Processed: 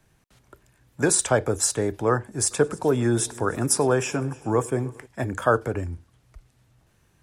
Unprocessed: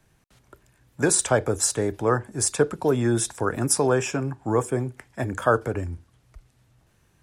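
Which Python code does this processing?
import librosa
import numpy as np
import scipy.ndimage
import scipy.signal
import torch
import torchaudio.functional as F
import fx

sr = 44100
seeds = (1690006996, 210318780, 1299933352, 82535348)

y = fx.echo_heads(x, sr, ms=101, heads='first and third', feedback_pct=52, wet_db=-24, at=(2.5, 5.05), fade=0.02)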